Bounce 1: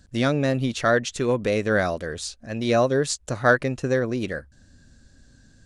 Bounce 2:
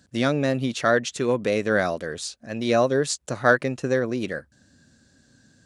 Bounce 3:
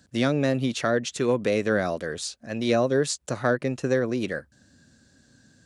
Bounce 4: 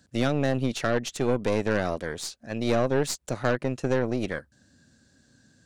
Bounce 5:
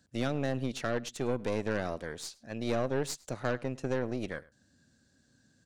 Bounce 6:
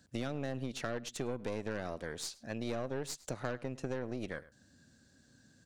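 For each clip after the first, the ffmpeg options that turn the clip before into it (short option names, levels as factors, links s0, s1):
-af "highpass=130"
-filter_complex "[0:a]acrossover=split=500[s0][s1];[s1]acompressor=threshold=0.0631:ratio=10[s2];[s0][s2]amix=inputs=2:normalize=0"
-af "aeval=exprs='0.335*(cos(1*acos(clip(val(0)/0.335,-1,1)))-cos(1*PI/2))+0.0376*(cos(6*acos(clip(val(0)/0.335,-1,1)))-cos(6*PI/2))':c=same,volume=0.75"
-filter_complex "[0:a]asplit=2[s0][s1];[s1]adelay=105,volume=0.0794,highshelf=f=4000:g=-2.36[s2];[s0][s2]amix=inputs=2:normalize=0,volume=0.447"
-af "acompressor=threshold=0.0112:ratio=3,volume=1.41"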